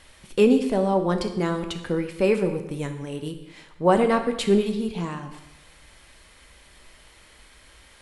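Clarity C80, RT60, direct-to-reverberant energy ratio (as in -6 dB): 11.5 dB, 0.95 s, 6.0 dB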